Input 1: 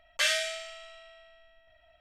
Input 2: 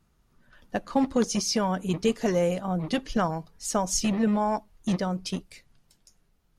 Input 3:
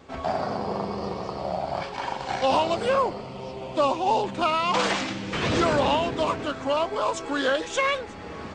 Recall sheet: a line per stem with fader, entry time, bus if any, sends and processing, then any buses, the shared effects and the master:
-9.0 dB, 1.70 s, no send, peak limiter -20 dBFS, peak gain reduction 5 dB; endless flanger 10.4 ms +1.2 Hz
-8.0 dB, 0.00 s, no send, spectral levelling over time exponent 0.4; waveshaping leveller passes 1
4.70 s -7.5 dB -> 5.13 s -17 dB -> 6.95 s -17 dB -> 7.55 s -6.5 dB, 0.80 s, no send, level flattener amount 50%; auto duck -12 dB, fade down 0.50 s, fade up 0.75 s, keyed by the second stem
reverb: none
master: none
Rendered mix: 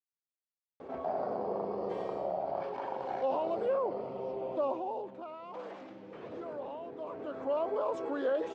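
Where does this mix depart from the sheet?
stem 2: muted; master: extra band-pass filter 490 Hz, Q 1.4

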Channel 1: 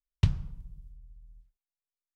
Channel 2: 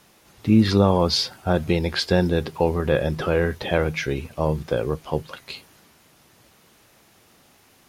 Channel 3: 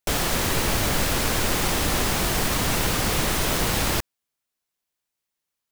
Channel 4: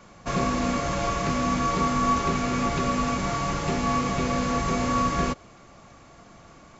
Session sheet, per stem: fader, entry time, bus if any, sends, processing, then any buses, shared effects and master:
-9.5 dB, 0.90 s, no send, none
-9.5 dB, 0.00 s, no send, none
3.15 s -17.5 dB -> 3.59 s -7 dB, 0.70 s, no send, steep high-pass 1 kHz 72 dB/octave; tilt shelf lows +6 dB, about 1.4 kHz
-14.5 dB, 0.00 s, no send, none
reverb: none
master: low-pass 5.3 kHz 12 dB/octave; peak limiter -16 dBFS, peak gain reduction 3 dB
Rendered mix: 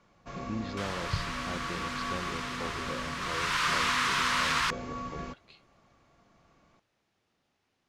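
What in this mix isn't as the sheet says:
stem 2 -9.5 dB -> -20.0 dB; stem 3 -17.5 dB -> -7.5 dB

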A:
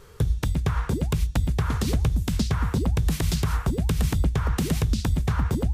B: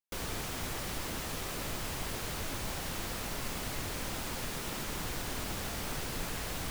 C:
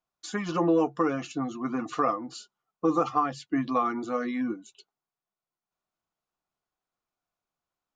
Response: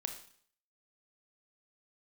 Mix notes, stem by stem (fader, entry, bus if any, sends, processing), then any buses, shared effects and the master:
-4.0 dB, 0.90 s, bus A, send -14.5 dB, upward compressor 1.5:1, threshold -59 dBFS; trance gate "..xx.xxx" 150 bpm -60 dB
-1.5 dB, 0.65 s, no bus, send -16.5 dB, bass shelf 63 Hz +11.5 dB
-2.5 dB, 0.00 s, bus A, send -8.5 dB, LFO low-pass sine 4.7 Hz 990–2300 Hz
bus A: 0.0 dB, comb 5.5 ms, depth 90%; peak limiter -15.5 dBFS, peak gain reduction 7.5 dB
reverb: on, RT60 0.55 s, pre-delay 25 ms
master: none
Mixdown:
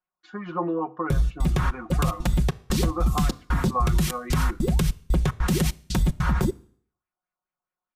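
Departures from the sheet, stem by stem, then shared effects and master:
stem A -4.0 dB -> +4.5 dB; stem B: muted; stem C -2.5 dB -> -9.5 dB

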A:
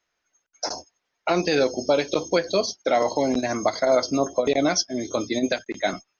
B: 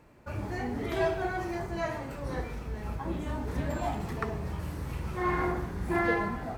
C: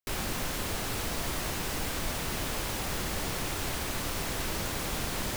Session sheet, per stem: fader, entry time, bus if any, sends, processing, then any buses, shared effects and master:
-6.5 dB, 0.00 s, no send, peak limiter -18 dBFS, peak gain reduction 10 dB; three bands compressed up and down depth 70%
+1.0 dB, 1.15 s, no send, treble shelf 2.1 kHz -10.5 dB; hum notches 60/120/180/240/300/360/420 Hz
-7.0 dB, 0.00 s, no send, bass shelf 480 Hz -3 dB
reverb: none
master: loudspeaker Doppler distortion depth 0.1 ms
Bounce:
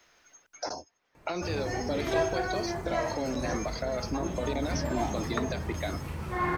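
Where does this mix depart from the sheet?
stem B: missing treble shelf 2.1 kHz -10.5 dB; stem C: muted; master: missing loudspeaker Doppler distortion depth 0.1 ms

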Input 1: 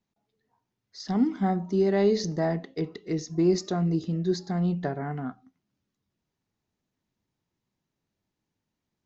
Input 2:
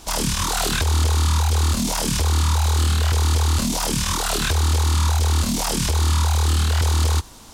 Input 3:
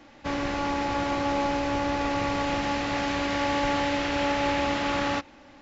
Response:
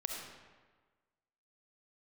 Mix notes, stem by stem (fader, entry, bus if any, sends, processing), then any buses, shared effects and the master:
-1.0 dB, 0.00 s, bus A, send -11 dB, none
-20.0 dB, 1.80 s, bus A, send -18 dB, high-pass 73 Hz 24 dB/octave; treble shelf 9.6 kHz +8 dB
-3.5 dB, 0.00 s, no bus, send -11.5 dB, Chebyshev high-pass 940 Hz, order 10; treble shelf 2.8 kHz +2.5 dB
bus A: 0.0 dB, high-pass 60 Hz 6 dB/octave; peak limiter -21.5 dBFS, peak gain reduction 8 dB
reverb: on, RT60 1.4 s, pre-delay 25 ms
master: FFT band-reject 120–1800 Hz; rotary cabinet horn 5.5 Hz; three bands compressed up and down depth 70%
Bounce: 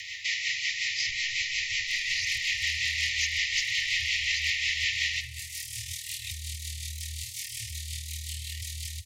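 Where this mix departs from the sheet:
stem 1 -1.0 dB -> +9.5 dB; stem 3 -3.5 dB -> +6.5 dB

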